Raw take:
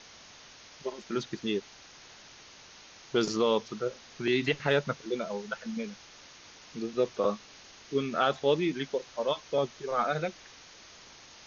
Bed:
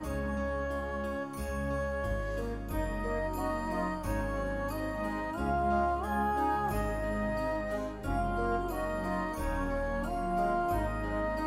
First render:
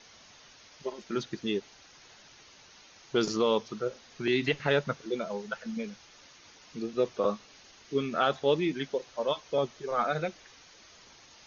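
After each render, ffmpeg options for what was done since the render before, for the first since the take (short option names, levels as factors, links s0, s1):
-af "afftdn=nr=6:nf=-53"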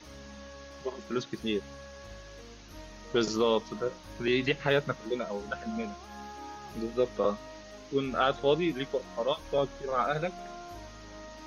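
-filter_complex "[1:a]volume=0.2[s0];[0:a][s0]amix=inputs=2:normalize=0"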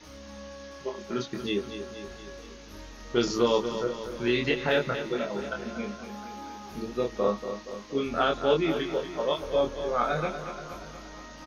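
-filter_complex "[0:a]asplit=2[s0][s1];[s1]adelay=25,volume=0.708[s2];[s0][s2]amix=inputs=2:normalize=0,aecho=1:1:236|472|708|944|1180|1416|1652:0.316|0.187|0.11|0.0649|0.0383|0.0226|0.0133"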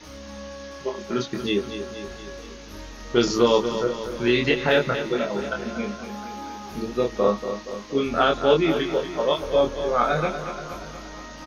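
-af "volume=1.88"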